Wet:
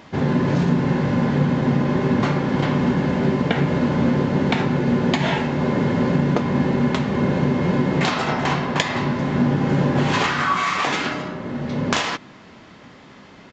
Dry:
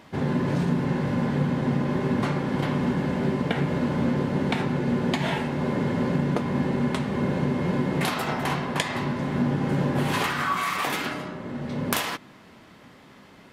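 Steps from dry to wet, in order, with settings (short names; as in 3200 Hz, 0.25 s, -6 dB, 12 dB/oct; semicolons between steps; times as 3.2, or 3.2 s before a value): downsampling 16000 Hz; gain +5.5 dB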